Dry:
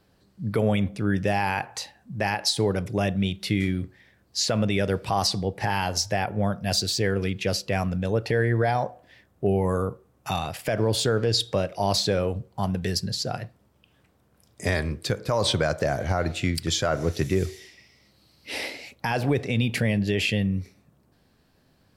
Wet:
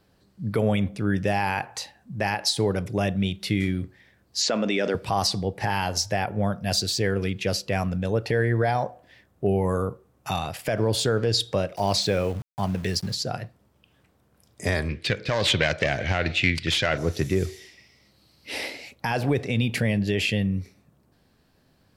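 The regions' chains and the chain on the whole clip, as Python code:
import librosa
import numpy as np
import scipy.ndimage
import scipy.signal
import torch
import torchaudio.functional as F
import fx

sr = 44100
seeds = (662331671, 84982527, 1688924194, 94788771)

y = fx.chain(x, sr, fx.cheby1_bandpass(low_hz=240.0, high_hz=7100.0, order=3),
    fx.env_flatten(amount_pct=70), at=(4.42, 4.95))
y = fx.chain(y, sr, fx.lowpass(hz=11000.0, slope=12),
    fx.peak_eq(hz=2300.0, db=5.0, octaves=0.39),
    fx.sample_gate(floor_db=-39.5), at=(11.76, 13.15))
y = fx.chain(y, sr, fx.self_delay(depth_ms=0.1),
    fx.lowpass(hz=3400.0, slope=12),
    fx.high_shelf_res(hz=1600.0, db=10.5, q=1.5), at=(14.89, 16.98))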